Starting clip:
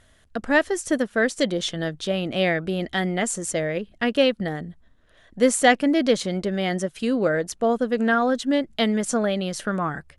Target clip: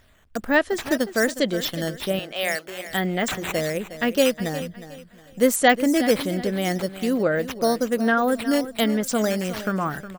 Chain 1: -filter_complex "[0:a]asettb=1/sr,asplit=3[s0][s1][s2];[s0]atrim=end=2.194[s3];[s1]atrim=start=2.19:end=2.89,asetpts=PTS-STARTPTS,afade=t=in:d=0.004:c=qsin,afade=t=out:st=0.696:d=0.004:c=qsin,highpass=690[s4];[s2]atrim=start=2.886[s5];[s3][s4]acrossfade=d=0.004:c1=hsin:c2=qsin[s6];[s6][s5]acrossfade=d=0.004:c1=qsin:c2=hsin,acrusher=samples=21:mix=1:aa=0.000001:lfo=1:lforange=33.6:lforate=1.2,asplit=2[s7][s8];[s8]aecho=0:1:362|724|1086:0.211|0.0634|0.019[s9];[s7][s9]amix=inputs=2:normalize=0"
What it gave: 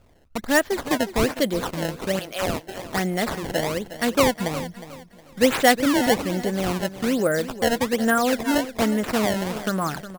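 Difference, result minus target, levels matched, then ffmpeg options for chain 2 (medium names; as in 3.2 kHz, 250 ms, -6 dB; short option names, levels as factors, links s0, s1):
decimation with a swept rate: distortion +10 dB
-filter_complex "[0:a]asettb=1/sr,asplit=3[s0][s1][s2];[s0]atrim=end=2.194[s3];[s1]atrim=start=2.19:end=2.89,asetpts=PTS-STARTPTS,afade=t=in:d=0.004:c=qsin,afade=t=out:st=0.696:d=0.004:c=qsin,highpass=690[s4];[s2]atrim=start=2.886[s5];[s3][s4]acrossfade=d=0.004:c1=hsin:c2=qsin[s6];[s6][s5]acrossfade=d=0.004:c1=qsin:c2=hsin,acrusher=samples=5:mix=1:aa=0.000001:lfo=1:lforange=8:lforate=1.2,asplit=2[s7][s8];[s8]aecho=0:1:362|724|1086:0.211|0.0634|0.019[s9];[s7][s9]amix=inputs=2:normalize=0"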